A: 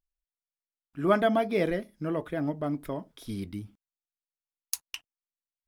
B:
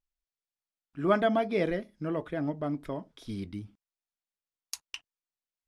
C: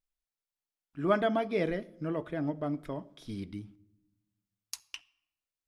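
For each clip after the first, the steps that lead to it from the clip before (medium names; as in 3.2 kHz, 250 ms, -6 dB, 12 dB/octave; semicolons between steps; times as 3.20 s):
low-pass 7.4 kHz 12 dB/octave; trim -1.5 dB
simulated room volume 3700 m³, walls furnished, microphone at 0.45 m; trim -2 dB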